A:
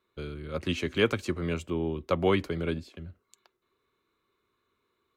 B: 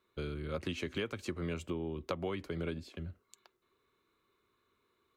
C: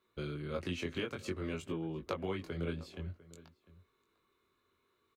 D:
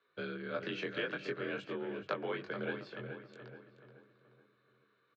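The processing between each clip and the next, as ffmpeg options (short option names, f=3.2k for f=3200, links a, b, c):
-af "acompressor=threshold=-33dB:ratio=12"
-filter_complex "[0:a]flanger=delay=18.5:depth=4.9:speed=0.54,asplit=2[a][b];[b]adelay=699.7,volume=-19dB,highshelf=f=4k:g=-15.7[c];[a][c]amix=inputs=2:normalize=0,volume=2.5dB"
-filter_complex "[0:a]afreqshift=43,highpass=110,equalizer=f=130:t=q:w=4:g=-8,equalizer=f=240:t=q:w=4:g=-9,equalizer=f=1.6k:t=q:w=4:g=10,lowpass=f=4.7k:w=0.5412,lowpass=f=4.7k:w=1.3066,asplit=2[a][b];[b]adelay=428,lowpass=f=2.4k:p=1,volume=-7.5dB,asplit=2[c][d];[d]adelay=428,lowpass=f=2.4k:p=1,volume=0.45,asplit=2[e][f];[f]adelay=428,lowpass=f=2.4k:p=1,volume=0.45,asplit=2[g][h];[h]adelay=428,lowpass=f=2.4k:p=1,volume=0.45,asplit=2[i][j];[j]adelay=428,lowpass=f=2.4k:p=1,volume=0.45[k];[a][c][e][g][i][k]amix=inputs=6:normalize=0"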